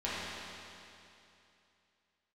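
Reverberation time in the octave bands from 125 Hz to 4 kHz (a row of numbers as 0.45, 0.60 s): 2.8, 2.8, 2.8, 2.8, 2.8, 2.7 s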